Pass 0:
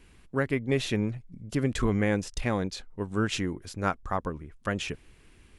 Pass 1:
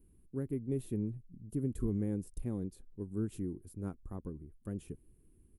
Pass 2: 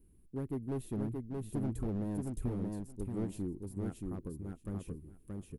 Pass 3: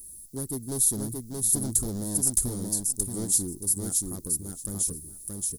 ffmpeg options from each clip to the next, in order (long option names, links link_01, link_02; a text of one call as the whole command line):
ffmpeg -i in.wav -af "firequalizer=gain_entry='entry(360,0);entry(600,-15);entry(1900,-25);entry(5800,-21);entry(10000,3)':delay=0.05:min_phase=1,volume=-7dB" out.wav
ffmpeg -i in.wav -filter_complex "[0:a]volume=31.5dB,asoftclip=hard,volume=-31.5dB,asplit=2[link_01][link_02];[link_02]aecho=0:1:626|1252|1878:0.708|0.106|0.0159[link_03];[link_01][link_03]amix=inputs=2:normalize=0" out.wav
ffmpeg -i in.wav -af "aexciter=amount=14:drive=9.4:freq=4200,aeval=exprs='0.398*(cos(1*acos(clip(val(0)/0.398,-1,1)))-cos(1*PI/2))+0.0355*(cos(5*acos(clip(val(0)/0.398,-1,1)))-cos(5*PI/2))':channel_layout=same" out.wav